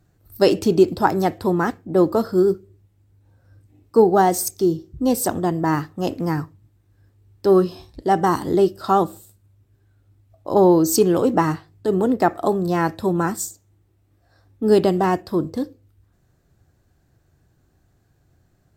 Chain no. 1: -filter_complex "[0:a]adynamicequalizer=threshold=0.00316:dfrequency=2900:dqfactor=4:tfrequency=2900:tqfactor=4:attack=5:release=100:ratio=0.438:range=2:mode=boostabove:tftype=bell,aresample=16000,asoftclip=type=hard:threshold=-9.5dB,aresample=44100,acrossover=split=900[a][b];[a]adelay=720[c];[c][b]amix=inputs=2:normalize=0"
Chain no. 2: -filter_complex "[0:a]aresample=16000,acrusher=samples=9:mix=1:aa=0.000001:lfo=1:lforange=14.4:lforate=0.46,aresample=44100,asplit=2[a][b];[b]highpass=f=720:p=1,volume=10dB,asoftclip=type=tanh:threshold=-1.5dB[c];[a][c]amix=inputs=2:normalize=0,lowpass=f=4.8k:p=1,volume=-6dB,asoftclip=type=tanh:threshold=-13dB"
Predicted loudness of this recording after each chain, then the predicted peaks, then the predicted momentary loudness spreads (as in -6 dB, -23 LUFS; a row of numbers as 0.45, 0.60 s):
-21.5, -22.0 LUFS; -5.5, -13.0 dBFS; 15, 9 LU